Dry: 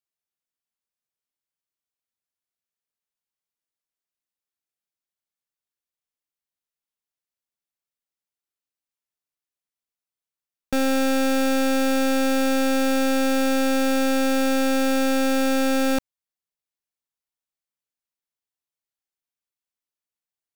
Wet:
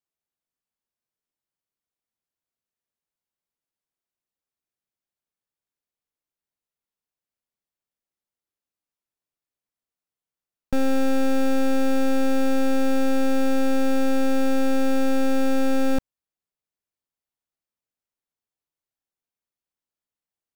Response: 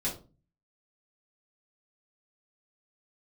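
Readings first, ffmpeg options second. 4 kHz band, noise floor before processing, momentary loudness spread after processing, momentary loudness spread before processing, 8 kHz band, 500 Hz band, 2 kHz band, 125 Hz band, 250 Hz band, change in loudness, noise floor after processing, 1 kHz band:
-8.0 dB, under -85 dBFS, 1 LU, 1 LU, -8.5 dB, -2.0 dB, -6.0 dB, n/a, -1.0 dB, -2.0 dB, under -85 dBFS, -3.5 dB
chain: -af "aeval=exprs='clip(val(0),-1,0.0178)':c=same,tiltshelf=f=1.2k:g=4"

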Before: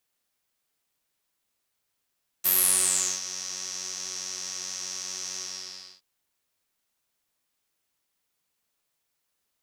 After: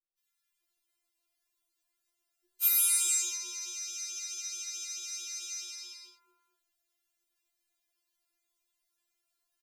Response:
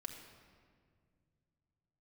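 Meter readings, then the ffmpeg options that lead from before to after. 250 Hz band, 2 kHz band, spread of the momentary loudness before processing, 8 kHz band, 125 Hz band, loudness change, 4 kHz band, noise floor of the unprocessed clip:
under -15 dB, -4.5 dB, 15 LU, -3.5 dB, n/a, -3.5 dB, -5.5 dB, -79 dBFS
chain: -filter_complex "[0:a]acrossover=split=210|1100[a][b][c];[c]adelay=180[d];[b]adelay=610[e];[a][e][d]amix=inputs=3:normalize=0,afftfilt=real='re*4*eq(mod(b,16),0)':imag='im*4*eq(mod(b,16),0)':win_size=2048:overlap=0.75,volume=-1dB"

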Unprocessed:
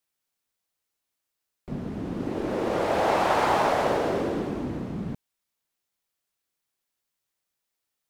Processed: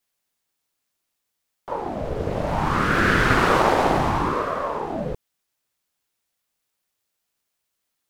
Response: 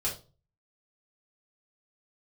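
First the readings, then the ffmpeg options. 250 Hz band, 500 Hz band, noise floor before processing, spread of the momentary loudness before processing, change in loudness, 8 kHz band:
+3.5 dB, +2.0 dB, -83 dBFS, 13 LU, +4.5 dB, +4.5 dB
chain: -af "aeval=exprs='val(0)*sin(2*PI*520*n/s+520*0.65/0.66*sin(2*PI*0.66*n/s))':c=same,volume=7.5dB"

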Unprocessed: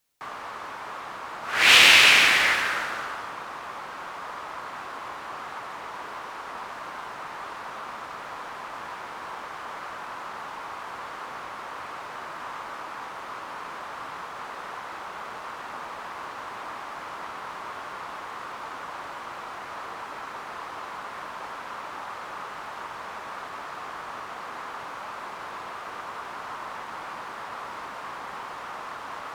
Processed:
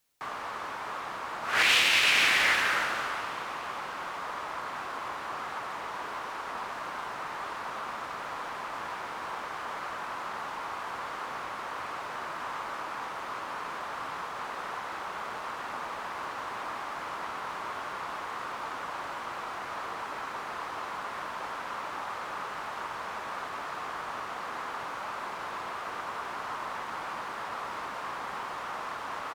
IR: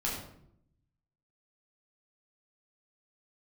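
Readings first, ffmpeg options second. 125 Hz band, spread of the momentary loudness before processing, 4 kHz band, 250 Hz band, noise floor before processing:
-2.0 dB, 8 LU, -7.5 dB, -2.0 dB, -39 dBFS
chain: -filter_complex "[0:a]alimiter=limit=-13dB:level=0:latency=1:release=410,asplit=7[a][b][c][d][e][f][g];[b]adelay=324,afreqshift=65,volume=-18.5dB[h];[c]adelay=648,afreqshift=130,volume=-22.4dB[i];[d]adelay=972,afreqshift=195,volume=-26.3dB[j];[e]adelay=1296,afreqshift=260,volume=-30.1dB[k];[f]adelay=1620,afreqshift=325,volume=-34dB[l];[g]adelay=1944,afreqshift=390,volume=-37.9dB[m];[a][h][i][j][k][l][m]amix=inputs=7:normalize=0"

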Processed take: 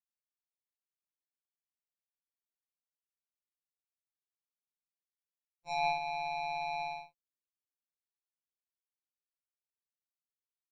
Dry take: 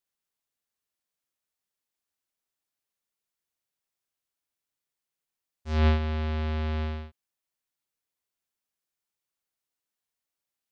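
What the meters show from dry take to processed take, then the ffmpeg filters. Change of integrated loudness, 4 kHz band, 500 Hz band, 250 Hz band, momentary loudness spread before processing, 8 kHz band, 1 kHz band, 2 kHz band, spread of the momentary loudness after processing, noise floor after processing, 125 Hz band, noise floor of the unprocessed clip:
-7.5 dB, -3.0 dB, -4.0 dB, under -25 dB, 17 LU, n/a, +5.5 dB, -1.0 dB, 10 LU, under -85 dBFS, -31.0 dB, under -85 dBFS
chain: -filter_complex "[0:a]agate=range=-33dB:threshold=-32dB:ratio=3:detection=peak,equalizer=f=240:t=o:w=0.77:g=9.5,asplit=2[a][b];[b]acompressor=threshold=-29dB:ratio=6,volume=2.5dB[c];[a][c]amix=inputs=2:normalize=0,afftfilt=real='re*2.83*eq(mod(b,8),0)':imag='im*2.83*eq(mod(b,8),0)':win_size=2048:overlap=0.75,volume=-1dB"

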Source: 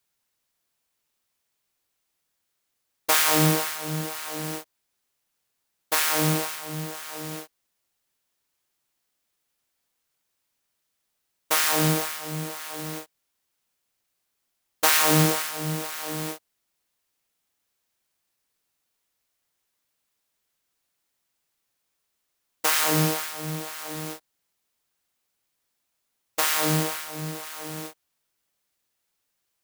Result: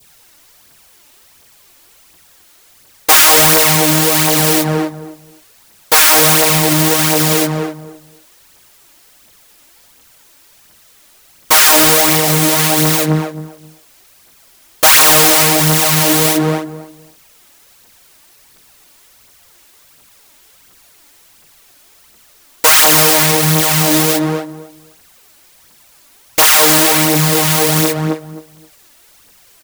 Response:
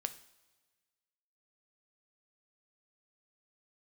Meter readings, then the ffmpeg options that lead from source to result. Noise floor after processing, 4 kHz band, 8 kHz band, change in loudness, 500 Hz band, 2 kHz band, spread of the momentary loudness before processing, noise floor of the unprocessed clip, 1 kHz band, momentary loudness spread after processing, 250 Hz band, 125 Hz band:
-48 dBFS, +16.5 dB, +17.0 dB, +15.5 dB, +16.0 dB, +15.0 dB, 16 LU, -78 dBFS, +14.5 dB, 13 LU, +14.0 dB, +12.5 dB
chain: -filter_complex "[0:a]aphaser=in_gain=1:out_gain=1:delay=3.6:decay=0.5:speed=1.4:type=triangular,asplit=2[a][b];[b]adelay=263,lowpass=f=910:p=1,volume=-9.5dB,asplit=2[c][d];[d]adelay=263,lowpass=f=910:p=1,volume=0.21,asplit=2[e][f];[f]adelay=263,lowpass=f=910:p=1,volume=0.21[g];[a][c][e][g]amix=inputs=4:normalize=0,acrossover=split=520[h][i];[h]acompressor=threshold=-35dB:ratio=6[j];[j][i]amix=inputs=2:normalize=0,asoftclip=type=tanh:threshold=-21dB,adynamicequalizer=threshold=0.00631:dfrequency=1400:dqfactor=1.2:tfrequency=1400:tqfactor=1.2:attack=5:release=100:ratio=0.375:range=2.5:mode=cutabove:tftype=bell,alimiter=level_in=31dB:limit=-1dB:release=50:level=0:latency=1,volume=-2dB"

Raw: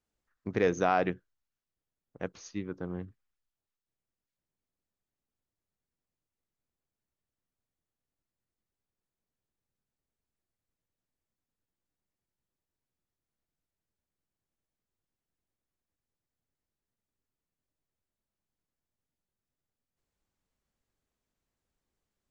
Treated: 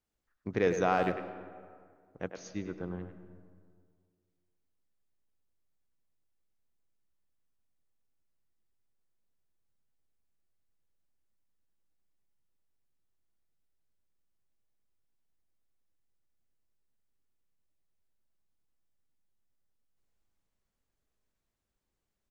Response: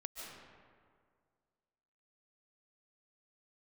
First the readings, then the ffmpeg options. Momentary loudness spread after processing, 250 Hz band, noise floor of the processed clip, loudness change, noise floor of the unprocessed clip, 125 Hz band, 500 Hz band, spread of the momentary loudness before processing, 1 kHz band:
20 LU, -1.0 dB, -84 dBFS, -1.0 dB, under -85 dBFS, -0.5 dB, -0.5 dB, 16 LU, -1.0 dB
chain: -filter_complex "[0:a]asplit=2[a][b];[b]adelay=100,highpass=300,lowpass=3.4k,asoftclip=type=hard:threshold=-20dB,volume=-7dB[c];[a][c]amix=inputs=2:normalize=0,asplit=2[d][e];[1:a]atrim=start_sample=2205,lowshelf=f=95:g=10[f];[e][f]afir=irnorm=-1:irlink=0,volume=-7dB[g];[d][g]amix=inputs=2:normalize=0,volume=-3.5dB"

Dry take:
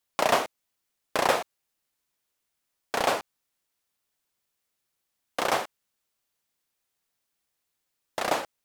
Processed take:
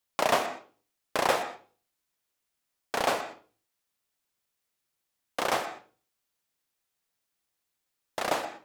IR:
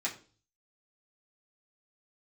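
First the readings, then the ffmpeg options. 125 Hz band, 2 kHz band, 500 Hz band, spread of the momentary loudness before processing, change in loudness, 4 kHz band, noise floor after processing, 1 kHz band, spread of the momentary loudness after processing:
-2.0 dB, -1.5 dB, -2.0 dB, 13 LU, -2.0 dB, -2.0 dB, -82 dBFS, -1.5 dB, 15 LU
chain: -filter_complex "[0:a]asplit=2[a][b];[1:a]atrim=start_sample=2205,highshelf=f=8.7k:g=-11,adelay=121[c];[b][c]afir=irnorm=-1:irlink=0,volume=-15dB[d];[a][d]amix=inputs=2:normalize=0,volume=-2dB"

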